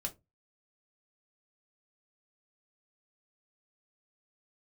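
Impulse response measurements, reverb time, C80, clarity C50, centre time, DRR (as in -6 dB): 0.20 s, 29.5 dB, 19.0 dB, 8 ms, 1.5 dB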